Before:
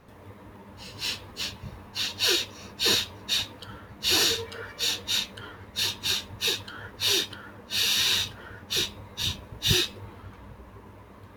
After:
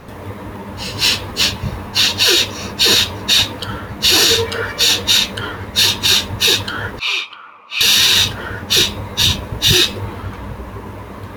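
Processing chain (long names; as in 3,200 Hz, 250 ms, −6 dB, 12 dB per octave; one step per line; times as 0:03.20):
0:06.99–0:07.81: pair of resonant band-passes 1,700 Hz, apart 0.98 octaves
boost into a limiter +18.5 dB
level −1 dB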